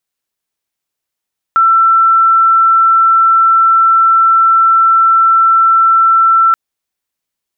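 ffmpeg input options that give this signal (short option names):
-f lavfi -i "aevalsrc='0.562*sin(2*PI*1340*t)':d=4.98:s=44100"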